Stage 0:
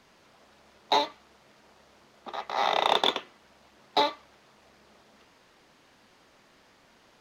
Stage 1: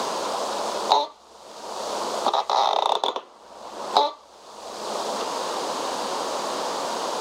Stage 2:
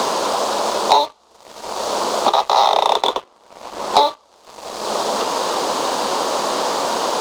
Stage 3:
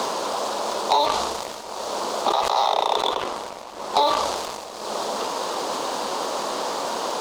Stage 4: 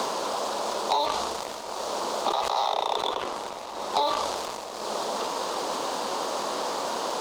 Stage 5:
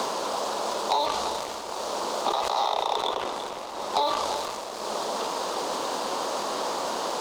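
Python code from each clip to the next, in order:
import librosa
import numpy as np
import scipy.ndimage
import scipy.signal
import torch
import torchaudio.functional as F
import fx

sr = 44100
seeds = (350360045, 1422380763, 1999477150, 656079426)

y1 = fx.graphic_eq(x, sr, hz=(125, 500, 1000, 2000, 4000, 8000), db=(-9, 8, 11, -10, 6, 10))
y1 = fx.band_squash(y1, sr, depth_pct=100)
y1 = F.gain(torch.from_numpy(y1), 2.0).numpy()
y2 = fx.leveller(y1, sr, passes=2)
y3 = fx.sustainer(y2, sr, db_per_s=30.0)
y3 = F.gain(torch.from_numpy(y3), -7.0).numpy()
y4 = y3 + 10.0 ** (-20.5 / 20.0) * np.pad(y3, (int(1175 * sr / 1000.0), 0))[:len(y3)]
y4 = fx.band_squash(y4, sr, depth_pct=40)
y4 = F.gain(torch.from_numpy(y4), -4.5).numpy()
y5 = y4 + 10.0 ** (-11.0 / 20.0) * np.pad(y4, (int(339 * sr / 1000.0), 0))[:len(y4)]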